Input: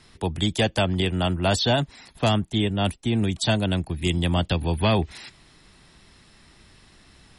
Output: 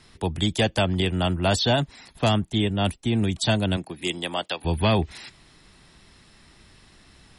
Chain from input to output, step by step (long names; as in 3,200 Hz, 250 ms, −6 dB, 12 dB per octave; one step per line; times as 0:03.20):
0:03.76–0:04.64: high-pass filter 210 Hz → 640 Hz 12 dB per octave